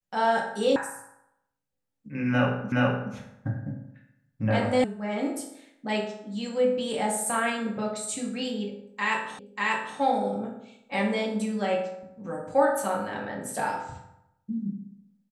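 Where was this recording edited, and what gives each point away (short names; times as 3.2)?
0.76 sound cut off
2.72 repeat of the last 0.42 s
4.84 sound cut off
9.39 repeat of the last 0.59 s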